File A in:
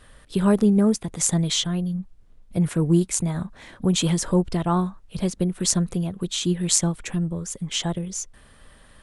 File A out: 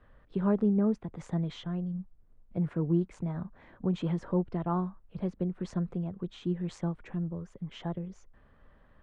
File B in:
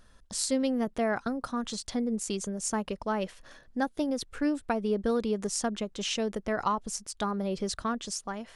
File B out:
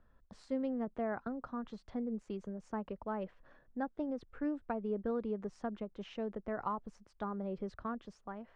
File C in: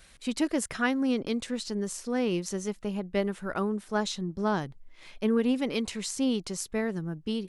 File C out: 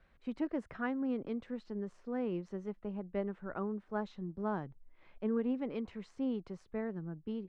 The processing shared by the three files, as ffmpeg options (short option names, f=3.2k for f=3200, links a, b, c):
-filter_complex "[0:a]lowpass=1.5k,acrossover=split=110[a][b];[a]alimiter=level_in=13.5dB:limit=-24dB:level=0:latency=1,volume=-13.5dB[c];[c][b]amix=inputs=2:normalize=0,volume=-8dB"